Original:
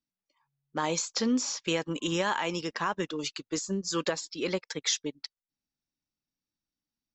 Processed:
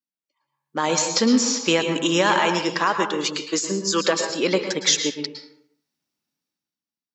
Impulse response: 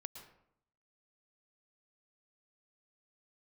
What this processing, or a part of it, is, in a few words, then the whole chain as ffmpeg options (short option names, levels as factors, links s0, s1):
far laptop microphone: -filter_complex "[1:a]atrim=start_sample=2205[s0];[0:a][s0]afir=irnorm=-1:irlink=0,highpass=170,dynaudnorm=f=110:g=13:m=5.62,asettb=1/sr,asplit=3[s1][s2][s3];[s1]atrim=end=2.794[s4];[s2]atrim=start=2.79:end=4.3,asetpts=PTS-STARTPTS,afade=t=in:d=0.004:c=qsin,afade=t=out:st=1.506:d=0.004:c=qsin,highpass=f=250:p=1[s5];[s3]atrim=start=4.296[s6];[s4][s5]acrossfade=d=0.004:c1=hsin:c2=qsin[s7];[s7][s6]acrossfade=d=0.004:c1=qsin:c2=hsin"